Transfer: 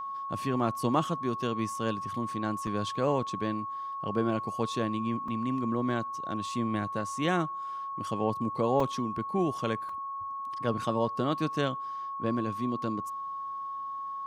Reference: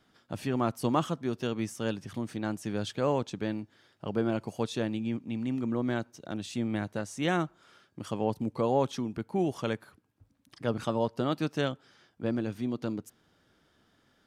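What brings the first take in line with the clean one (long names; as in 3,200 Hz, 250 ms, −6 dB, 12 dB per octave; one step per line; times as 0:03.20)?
notch filter 1,100 Hz, Q 30
repair the gap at 0:02.67/0:05.28/0:08.80/0:09.89, 3.3 ms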